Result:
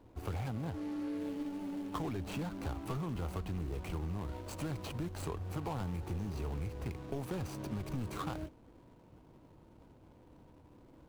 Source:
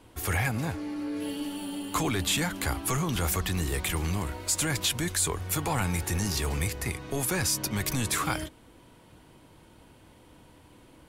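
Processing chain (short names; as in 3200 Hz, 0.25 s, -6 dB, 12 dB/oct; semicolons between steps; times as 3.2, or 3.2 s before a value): median filter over 25 samples; compressor, threshold -31 dBFS, peak gain reduction 6 dB; gain -3.5 dB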